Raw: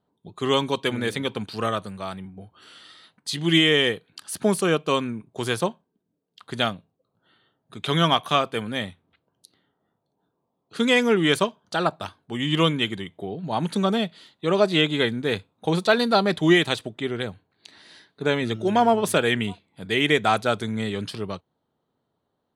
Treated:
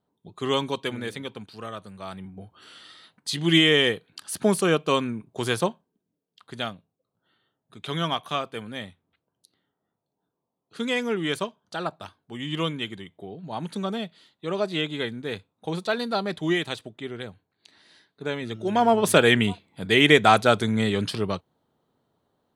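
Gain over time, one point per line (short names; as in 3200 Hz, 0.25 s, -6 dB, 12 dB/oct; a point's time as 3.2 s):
0.65 s -3 dB
1.67 s -11.5 dB
2.33 s 0 dB
5.66 s 0 dB
6.54 s -7 dB
18.47 s -7 dB
19.19 s +4 dB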